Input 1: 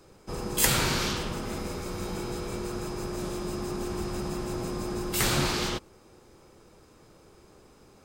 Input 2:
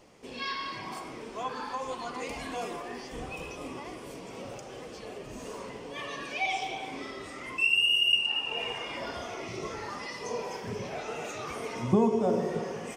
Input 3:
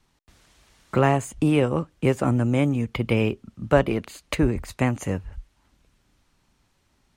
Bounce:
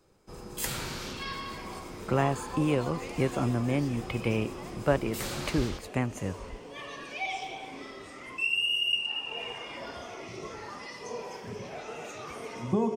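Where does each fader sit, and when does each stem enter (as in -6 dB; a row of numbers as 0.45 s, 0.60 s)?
-10.0 dB, -3.5 dB, -7.0 dB; 0.00 s, 0.80 s, 1.15 s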